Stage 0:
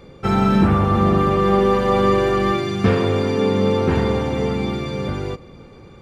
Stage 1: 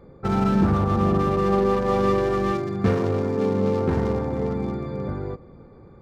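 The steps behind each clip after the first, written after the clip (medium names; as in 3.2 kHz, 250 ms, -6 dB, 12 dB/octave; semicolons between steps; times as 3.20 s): local Wiener filter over 15 samples; trim -4 dB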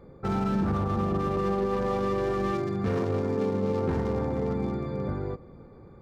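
peak limiter -17.5 dBFS, peak gain reduction 8 dB; trim -2 dB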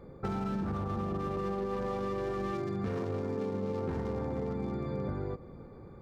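compression, threshold -31 dBFS, peak gain reduction 8 dB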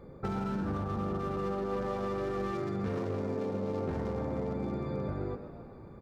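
frequency-shifting echo 129 ms, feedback 50%, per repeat +100 Hz, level -12 dB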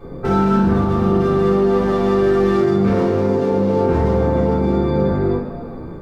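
reverberation, pre-delay 3 ms, DRR -9 dB; trim +6 dB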